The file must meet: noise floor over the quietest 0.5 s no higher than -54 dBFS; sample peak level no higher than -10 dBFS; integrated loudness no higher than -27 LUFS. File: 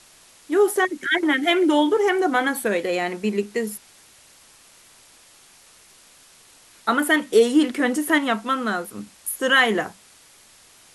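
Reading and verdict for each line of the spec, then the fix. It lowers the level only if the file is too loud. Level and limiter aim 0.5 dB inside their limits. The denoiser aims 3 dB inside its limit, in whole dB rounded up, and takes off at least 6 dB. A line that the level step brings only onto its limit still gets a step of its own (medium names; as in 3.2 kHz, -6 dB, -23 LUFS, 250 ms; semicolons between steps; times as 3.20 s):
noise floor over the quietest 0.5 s -52 dBFS: fail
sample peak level -5.5 dBFS: fail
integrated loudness -21.0 LUFS: fail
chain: trim -6.5 dB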